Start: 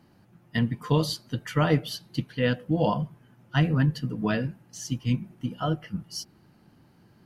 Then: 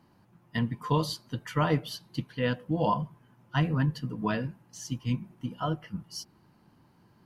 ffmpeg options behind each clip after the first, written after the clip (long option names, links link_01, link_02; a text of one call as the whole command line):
ffmpeg -i in.wav -af "equalizer=frequency=1000:width=3.9:gain=8,volume=-4dB" out.wav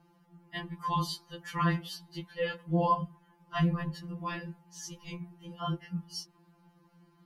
ffmpeg -i in.wav -af "afftfilt=real='re*2.83*eq(mod(b,8),0)':imag='im*2.83*eq(mod(b,8),0)':win_size=2048:overlap=0.75" out.wav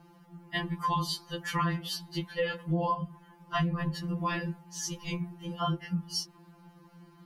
ffmpeg -i in.wav -af "acompressor=threshold=-34dB:ratio=6,volume=7.5dB" out.wav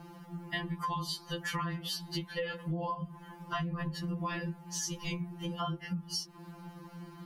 ffmpeg -i in.wav -af "acompressor=threshold=-42dB:ratio=4,volume=7dB" out.wav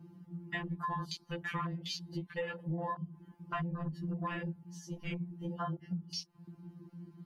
ffmpeg -i in.wav -af "afwtdn=0.01,volume=-1.5dB" out.wav